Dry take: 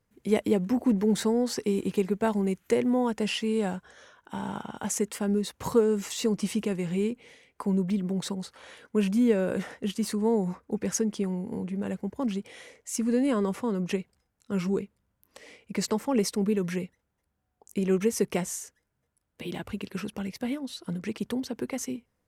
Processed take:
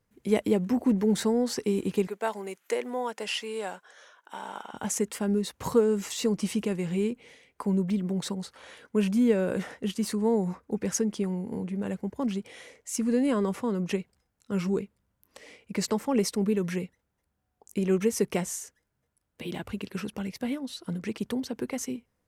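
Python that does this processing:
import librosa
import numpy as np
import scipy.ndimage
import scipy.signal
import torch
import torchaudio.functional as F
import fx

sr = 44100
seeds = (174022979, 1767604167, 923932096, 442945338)

y = fx.highpass(x, sr, hz=530.0, slope=12, at=(2.07, 4.74))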